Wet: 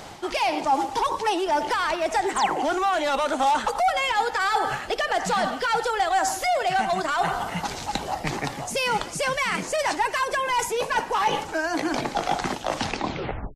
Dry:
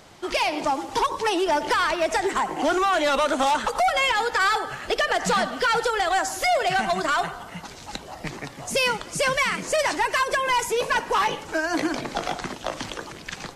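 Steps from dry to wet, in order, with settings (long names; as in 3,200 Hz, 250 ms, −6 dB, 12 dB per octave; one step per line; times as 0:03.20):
turntable brake at the end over 0.79 s
reversed playback
downward compressor 6 to 1, threshold −32 dBFS, peak gain reduction 12.5 dB
reversed playback
parametric band 810 Hz +6.5 dB 0.32 octaves
sound drawn into the spectrogram fall, 0:02.36–0:02.61, 290–10,000 Hz −39 dBFS
level +8 dB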